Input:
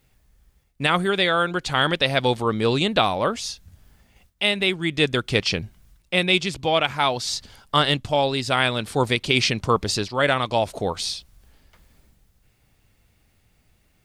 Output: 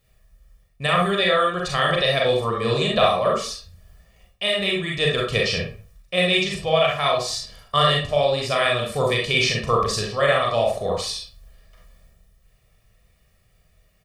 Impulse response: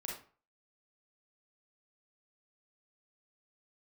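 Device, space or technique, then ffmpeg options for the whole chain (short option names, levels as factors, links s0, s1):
microphone above a desk: -filter_complex "[0:a]aecho=1:1:1.7:0.74[s0];[1:a]atrim=start_sample=2205[s1];[s0][s1]afir=irnorm=-1:irlink=0"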